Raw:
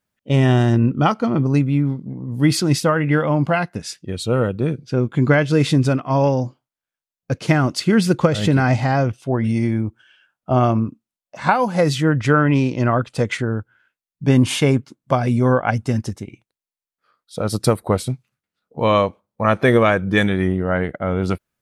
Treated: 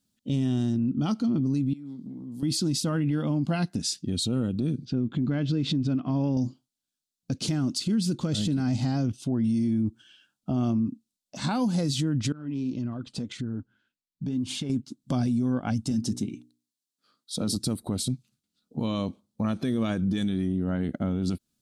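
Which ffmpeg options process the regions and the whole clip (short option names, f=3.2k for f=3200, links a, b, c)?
-filter_complex "[0:a]asettb=1/sr,asplit=3[a][b][c];[a]atrim=end=1.734[d];[b]atrim=start=1.73:end=2.43,asetpts=PTS-STARTPTS,afade=t=in:d=0.004:c=qsin,afade=t=out:st=0.696:d=0.004:c=qsin,highpass=f=710:p=1,acompressor=threshold=-40dB:ratio=6:attack=3.2:release=140:knee=1:detection=peak[e];[c]atrim=start=2.426[f];[d][e]acrossfade=d=0.004:c1=hsin:c2=qsin[g];[g][f]acrossfade=d=0.004:c1=qsin:c2=hsin,asettb=1/sr,asplit=3[h][i][j];[h]atrim=end=4.854[k];[i]atrim=start=4.85:end=6.37,asetpts=PTS-STARTPTS,afade=t=in:d=0.004:c=qsin,afade=t=out:st=1.516:d=0.004:c=qsin,lowpass=3k,acompressor=threshold=-26dB:ratio=2.5:attack=3.2:release=140:knee=1:detection=peak[l];[j]atrim=start=6.366[m];[k][l]acrossfade=d=0.004:c1=hsin:c2=qsin[n];[n][m]acrossfade=d=0.004:c1=qsin:c2=hsin,asettb=1/sr,asplit=3[o][p][q];[o]atrim=end=12.324[r];[p]atrim=start=12.32:end=14.7,asetpts=PTS-STARTPTS,afade=t=in:d=0.004:c=qsin,afade=t=out:st=2.376:d=0.004:c=qsin,lowpass=f=3.3k:p=1,flanger=delay=0.4:depth=4.7:regen=62:speed=1.8:shape=sinusoidal,acompressor=threshold=-32dB:ratio=8:attack=3.2:release=140:knee=1:detection=peak[s];[q]atrim=start=14.696[t];[r][s]acrossfade=d=0.004:c1=hsin:c2=qsin[u];[u][t]acrossfade=d=0.004:c1=qsin:c2=hsin,asettb=1/sr,asplit=3[v][w][x];[v]atrim=end=15.914[y];[w]atrim=start=15.91:end=17.56,asetpts=PTS-STARTPTS,afade=t=in:d=0.004:c=qsin,afade=t=out:st=1.646:d=0.004:c=qsin,highpass=120,bandreject=f=60:t=h:w=6,bandreject=f=120:t=h:w=6,bandreject=f=180:t=h:w=6,bandreject=f=240:t=h:w=6,bandreject=f=300:t=h:w=6,bandreject=f=360:t=h:w=6,bandreject=f=420:t=h:w=6[z];[x]atrim=start=17.556[aa];[y][z]acrossfade=d=0.004:c1=hsin:c2=qsin[ab];[ab][aa]acrossfade=d=0.004:c1=qsin:c2=hsin,equalizer=f=250:t=o:w=1:g=11,equalizer=f=500:t=o:w=1:g=-8,equalizer=f=1k:t=o:w=1:g=-6,equalizer=f=2k:t=o:w=1:g=-11,equalizer=f=4k:t=o:w=1:g=8,equalizer=f=8k:t=o:w=1:g=6,acompressor=threshold=-20dB:ratio=5,alimiter=limit=-19dB:level=0:latency=1:release=28"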